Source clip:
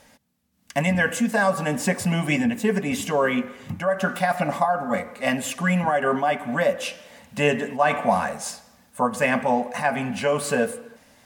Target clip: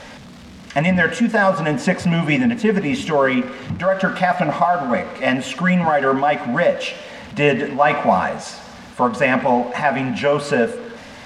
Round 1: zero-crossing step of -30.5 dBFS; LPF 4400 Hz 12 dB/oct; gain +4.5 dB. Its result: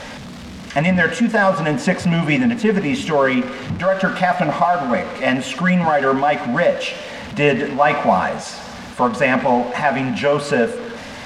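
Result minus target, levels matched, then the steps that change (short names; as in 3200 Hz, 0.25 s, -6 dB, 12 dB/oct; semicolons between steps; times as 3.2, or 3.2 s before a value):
zero-crossing step: distortion +5 dB
change: zero-crossing step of -36.5 dBFS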